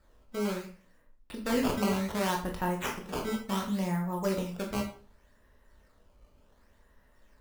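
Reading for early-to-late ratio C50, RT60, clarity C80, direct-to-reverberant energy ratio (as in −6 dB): 8.0 dB, 0.40 s, 12.5 dB, 0.5 dB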